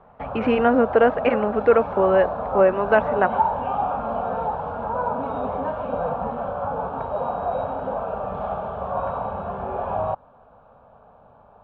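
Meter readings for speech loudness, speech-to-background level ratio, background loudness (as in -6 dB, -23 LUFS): -20.0 LUFS, 7.0 dB, -27.0 LUFS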